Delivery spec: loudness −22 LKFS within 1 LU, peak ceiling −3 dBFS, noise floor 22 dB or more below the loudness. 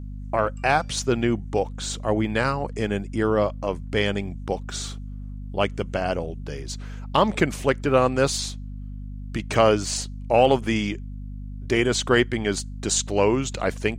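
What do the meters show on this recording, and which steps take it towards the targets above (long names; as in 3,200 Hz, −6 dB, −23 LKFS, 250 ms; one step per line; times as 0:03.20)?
mains hum 50 Hz; hum harmonics up to 250 Hz; level of the hum −32 dBFS; integrated loudness −24.0 LKFS; sample peak −5.5 dBFS; target loudness −22.0 LKFS
→ mains-hum notches 50/100/150/200/250 Hz
level +2 dB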